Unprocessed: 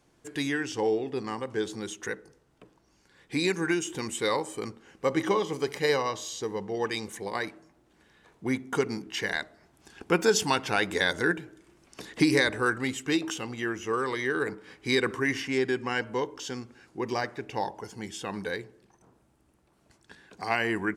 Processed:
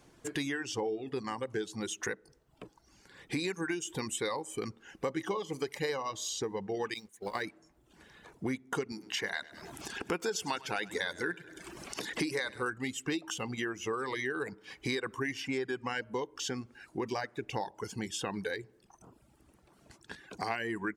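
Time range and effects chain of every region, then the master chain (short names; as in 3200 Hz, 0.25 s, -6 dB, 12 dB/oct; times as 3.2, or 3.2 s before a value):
6.94–7.42 zero-crossing step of -43 dBFS + expander -27 dBFS
8.92–12.63 low shelf 150 Hz -9 dB + upward compressor, threshold -36 dBFS + feedback echo 0.101 s, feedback 53%, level -11.5 dB
whole clip: reverb removal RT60 0.75 s; compressor 4:1, threshold -39 dBFS; gain +5.5 dB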